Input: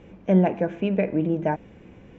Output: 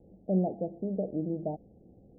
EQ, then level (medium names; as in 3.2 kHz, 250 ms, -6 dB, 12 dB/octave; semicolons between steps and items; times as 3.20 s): steep low-pass 800 Hz 96 dB/octave; -9.0 dB